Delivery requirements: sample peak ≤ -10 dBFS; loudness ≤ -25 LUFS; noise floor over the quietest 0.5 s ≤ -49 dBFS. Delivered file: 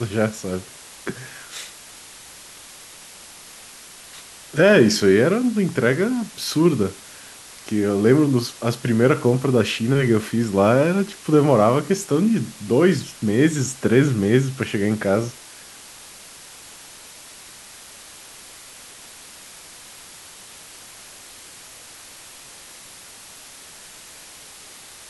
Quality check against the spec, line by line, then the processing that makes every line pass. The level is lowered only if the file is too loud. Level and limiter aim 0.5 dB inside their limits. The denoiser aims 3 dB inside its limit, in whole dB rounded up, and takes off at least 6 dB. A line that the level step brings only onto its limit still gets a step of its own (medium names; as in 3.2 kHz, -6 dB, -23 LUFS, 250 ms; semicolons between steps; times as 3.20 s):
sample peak -3.0 dBFS: fail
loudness -19.5 LUFS: fail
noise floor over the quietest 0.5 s -43 dBFS: fail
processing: noise reduction 6 dB, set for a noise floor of -43 dBFS; trim -6 dB; peak limiter -10.5 dBFS